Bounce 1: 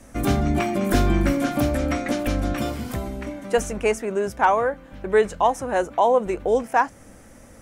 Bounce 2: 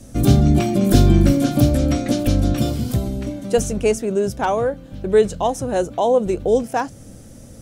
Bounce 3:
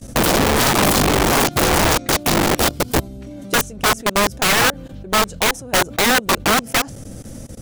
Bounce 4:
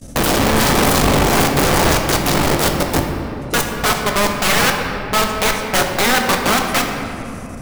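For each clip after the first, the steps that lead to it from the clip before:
ten-band graphic EQ 125 Hz +8 dB, 1 kHz -9 dB, 2 kHz -10 dB, 4 kHz +4 dB; trim +5 dB
level held to a coarse grid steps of 21 dB; integer overflow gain 19 dB; trim +8.5 dB
simulated room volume 120 m³, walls hard, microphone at 0.32 m; trim -1 dB

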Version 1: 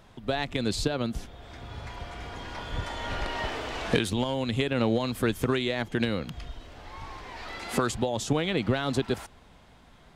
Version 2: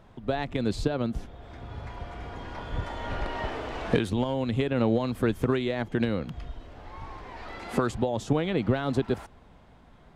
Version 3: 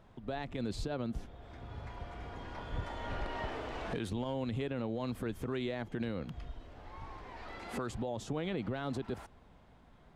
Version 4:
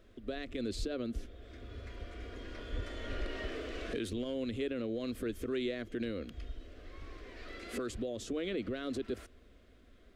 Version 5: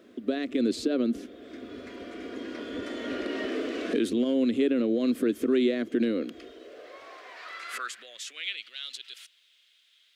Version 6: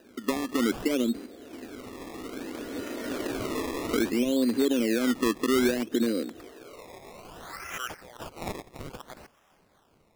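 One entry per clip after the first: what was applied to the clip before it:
treble shelf 2.2 kHz -11.5 dB; trim +1.5 dB
peak limiter -21 dBFS, peak gain reduction 10 dB; trim -6 dB
static phaser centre 360 Hz, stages 4; trim +3 dB
high-pass sweep 260 Hz -> 3.2 kHz, 6.13–8.69 s; trim +6.5 dB
decimation with a swept rate 20×, swing 100% 0.61 Hz

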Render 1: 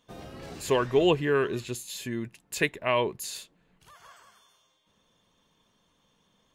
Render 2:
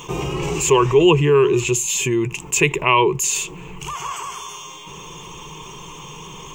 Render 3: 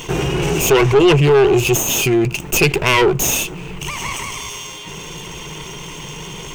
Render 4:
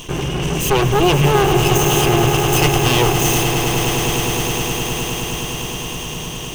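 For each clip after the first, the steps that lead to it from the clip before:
rippled EQ curve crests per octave 0.72, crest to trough 16 dB; level flattener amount 50%; trim +2 dB
comb filter that takes the minimum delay 0.33 ms; saturation -13 dBFS, distortion -12 dB; trim +6.5 dB
comb filter that takes the minimum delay 0.65 ms; on a send: echo with a slow build-up 104 ms, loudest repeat 8, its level -10 dB; on the sum: trim -1.5 dB

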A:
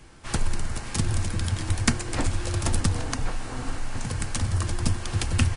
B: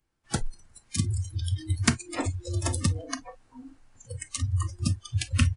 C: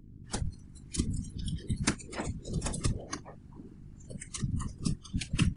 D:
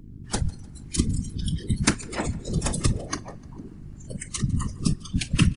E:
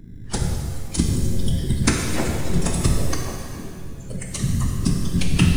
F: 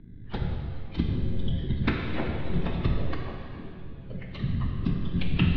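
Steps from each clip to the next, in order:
spectral noise reduction 29 dB
mains buzz 50 Hz, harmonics 5, -43 dBFS -6 dB/octave; whisper effect; trim -5.5 dB
feedback delay 151 ms, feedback 48%, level -24 dB; on a send at -23.5 dB: reverberation RT60 3.2 s, pre-delay 3 ms; on the sum: trim +8 dB
in parallel at -11 dB: sample-and-hold 24×; on the sum: pitch-shifted reverb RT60 1.9 s, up +7 st, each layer -8 dB, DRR 0.5 dB
steep low-pass 3.8 kHz 48 dB/octave; trim -6.5 dB

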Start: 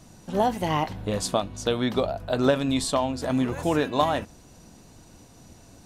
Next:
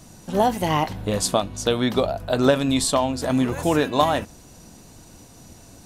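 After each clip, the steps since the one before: treble shelf 7.8 kHz +7 dB; trim +3.5 dB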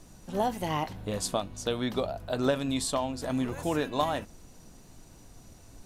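added noise brown -43 dBFS; trim -9 dB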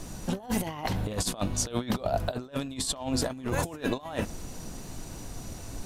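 compressor with a negative ratio -36 dBFS, ratio -0.5; trim +6 dB

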